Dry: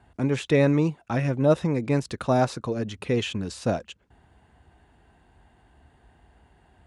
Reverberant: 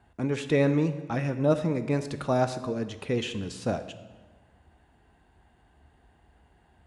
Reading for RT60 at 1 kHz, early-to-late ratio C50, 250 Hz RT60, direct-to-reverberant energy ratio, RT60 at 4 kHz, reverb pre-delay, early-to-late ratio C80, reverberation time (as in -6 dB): 1.3 s, 11.5 dB, 1.5 s, 9.5 dB, 1.0 s, 3 ms, 13.5 dB, 1.3 s